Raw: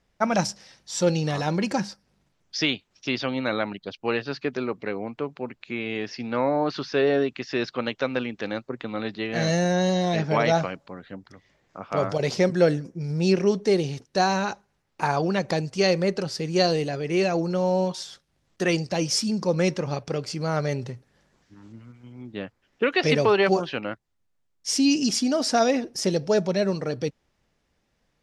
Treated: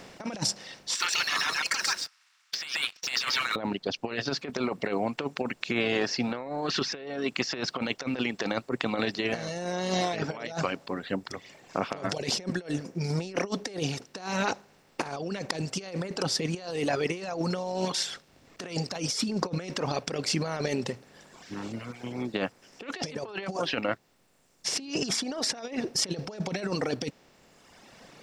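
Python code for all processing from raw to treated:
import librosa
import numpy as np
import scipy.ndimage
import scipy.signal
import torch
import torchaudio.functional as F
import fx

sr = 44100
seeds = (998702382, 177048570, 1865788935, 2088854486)

y = fx.chain(x, sr, fx.steep_highpass(hz=1200.0, slope=48),
    fx.leveller(passes=2),
    fx.echo_single(ms=133, db=-3.0), at=(0.95, 3.56))
y = fx.bin_compress(y, sr, power=0.6)
y = fx.dereverb_blind(y, sr, rt60_s=1.6)
y = fx.over_compress(y, sr, threshold_db=-25.0, ratio=-0.5)
y = F.gain(torch.from_numpy(y), -4.5).numpy()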